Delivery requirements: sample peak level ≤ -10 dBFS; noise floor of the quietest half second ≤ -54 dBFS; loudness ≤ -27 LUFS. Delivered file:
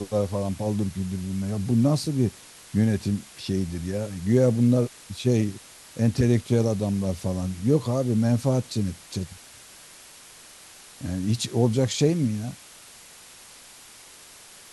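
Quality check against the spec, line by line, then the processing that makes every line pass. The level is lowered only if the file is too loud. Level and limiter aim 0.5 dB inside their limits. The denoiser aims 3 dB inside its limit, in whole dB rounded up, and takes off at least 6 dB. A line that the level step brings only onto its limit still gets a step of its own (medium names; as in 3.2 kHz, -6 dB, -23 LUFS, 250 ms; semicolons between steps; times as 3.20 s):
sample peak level -8.0 dBFS: fail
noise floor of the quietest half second -48 dBFS: fail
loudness -25.0 LUFS: fail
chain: noise reduction 7 dB, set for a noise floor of -48 dBFS; trim -2.5 dB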